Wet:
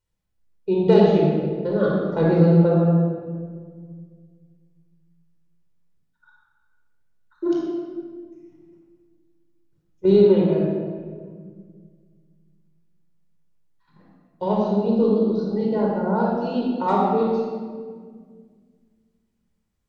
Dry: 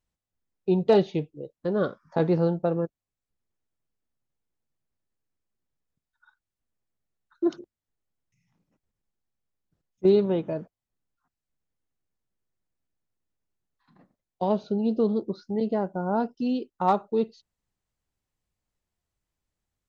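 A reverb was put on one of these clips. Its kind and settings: shoebox room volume 2400 m³, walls mixed, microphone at 4.7 m; gain -2.5 dB

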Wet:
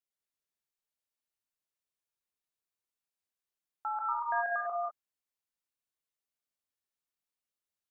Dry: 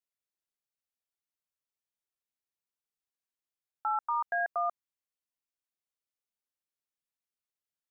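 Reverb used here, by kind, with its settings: non-linear reverb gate 0.22 s rising, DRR -1 dB; gain -4 dB

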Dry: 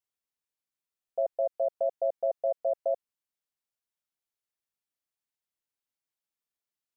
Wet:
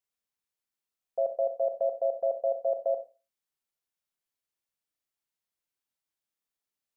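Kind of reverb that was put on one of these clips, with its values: Schroeder reverb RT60 0.31 s, combs from 29 ms, DRR 6.5 dB

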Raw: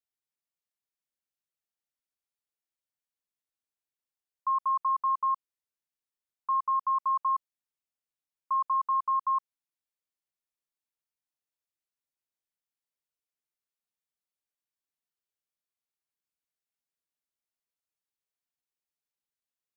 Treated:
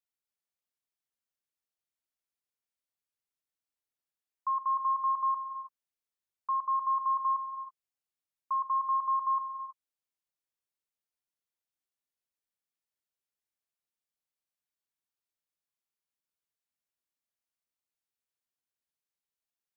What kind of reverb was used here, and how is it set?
non-linear reverb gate 0.35 s rising, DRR 10 dB; gain -2.5 dB

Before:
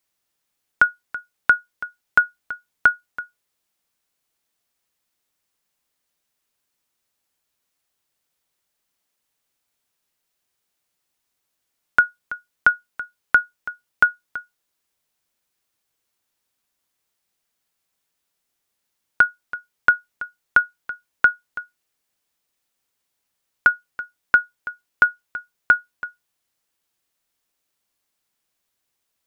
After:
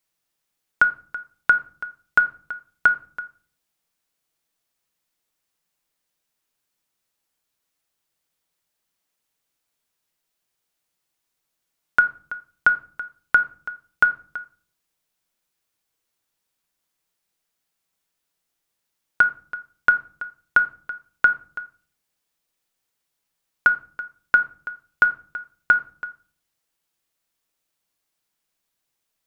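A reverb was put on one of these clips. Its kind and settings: shoebox room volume 420 m³, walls furnished, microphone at 0.63 m; gain -2 dB

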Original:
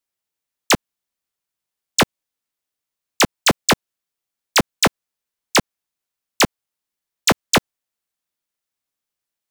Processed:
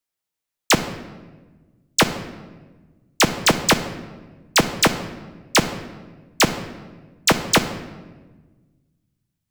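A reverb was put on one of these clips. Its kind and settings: shoebox room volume 1000 m³, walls mixed, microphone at 0.61 m; gain -1 dB

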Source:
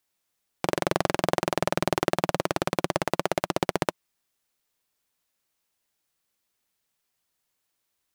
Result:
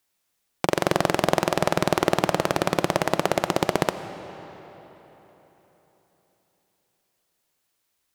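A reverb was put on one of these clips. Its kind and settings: digital reverb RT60 4 s, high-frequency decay 0.75×, pre-delay 45 ms, DRR 11 dB; gain +3.5 dB

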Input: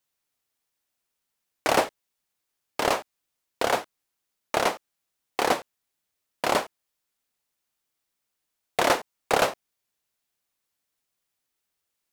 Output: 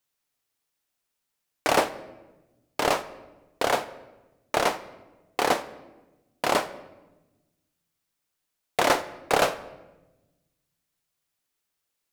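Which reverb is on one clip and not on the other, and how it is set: shoebox room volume 570 m³, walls mixed, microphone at 0.35 m

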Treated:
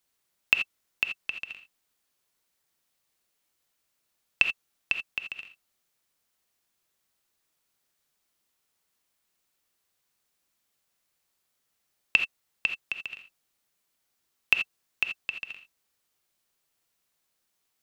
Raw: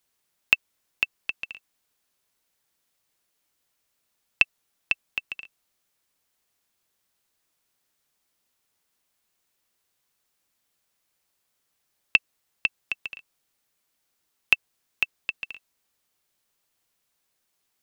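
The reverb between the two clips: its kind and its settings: non-linear reverb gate 0.1 s rising, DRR 6.5 dB; gain -2.5 dB

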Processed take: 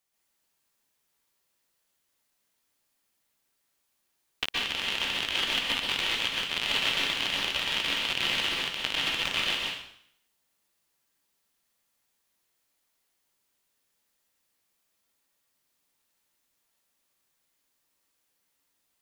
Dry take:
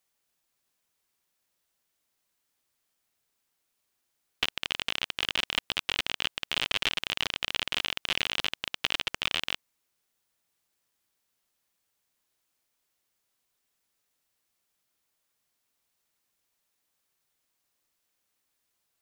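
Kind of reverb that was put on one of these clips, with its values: plate-style reverb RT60 0.67 s, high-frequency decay 1×, pre-delay 0.11 s, DRR -4.5 dB; gain -3 dB

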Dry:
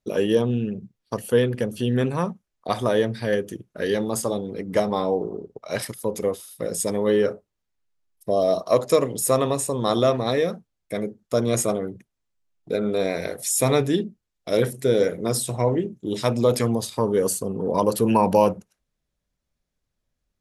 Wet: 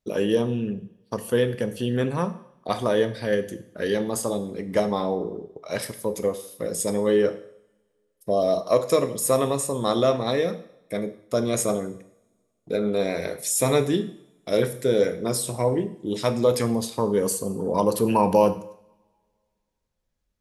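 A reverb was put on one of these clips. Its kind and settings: two-slope reverb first 0.66 s, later 2.2 s, from -27 dB, DRR 10 dB; gain -1.5 dB

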